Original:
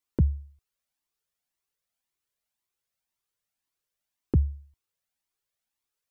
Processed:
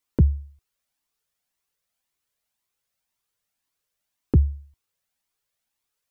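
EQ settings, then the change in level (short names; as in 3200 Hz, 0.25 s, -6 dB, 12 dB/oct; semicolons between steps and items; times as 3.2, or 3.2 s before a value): notch 360 Hz, Q 12; +5.0 dB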